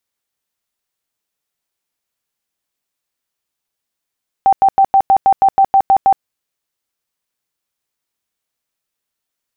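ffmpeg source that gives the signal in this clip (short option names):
-f lavfi -i "aevalsrc='0.501*sin(2*PI*780*mod(t,0.16))*lt(mod(t,0.16),52/780)':d=1.76:s=44100"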